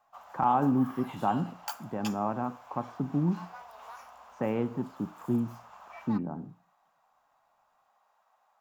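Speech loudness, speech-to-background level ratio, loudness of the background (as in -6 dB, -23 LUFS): -31.5 LUFS, 15.0 dB, -46.5 LUFS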